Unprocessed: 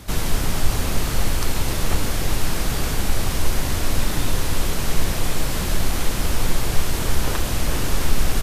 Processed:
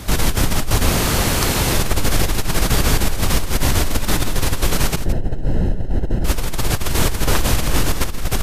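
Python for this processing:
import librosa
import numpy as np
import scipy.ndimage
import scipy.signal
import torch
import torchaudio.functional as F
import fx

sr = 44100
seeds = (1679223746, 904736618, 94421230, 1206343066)

p1 = fx.highpass(x, sr, hz=81.0, slope=6, at=(0.89, 1.74))
p2 = fx.over_compress(p1, sr, threshold_db=-20.0, ratio=-1.0)
p3 = fx.moving_average(p2, sr, points=38, at=(4.95, 6.24), fade=0.02)
p4 = p3 + fx.echo_single(p3, sr, ms=167, db=-12.0, dry=0)
y = p4 * 10.0 ** (4.5 / 20.0)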